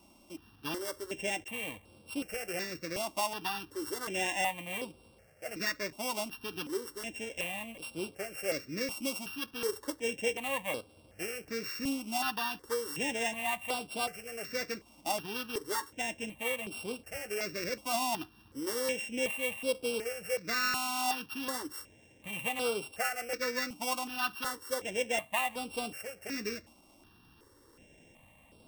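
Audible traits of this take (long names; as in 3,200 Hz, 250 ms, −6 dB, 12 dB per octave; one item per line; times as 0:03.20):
a buzz of ramps at a fixed pitch in blocks of 16 samples
notches that jump at a steady rate 2.7 Hz 470–6,500 Hz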